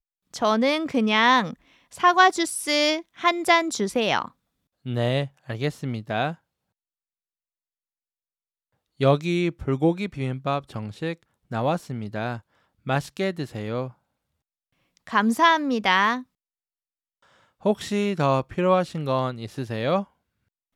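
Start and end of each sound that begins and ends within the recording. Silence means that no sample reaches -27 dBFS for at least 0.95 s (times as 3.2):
9.01–13.86
15.07–16.19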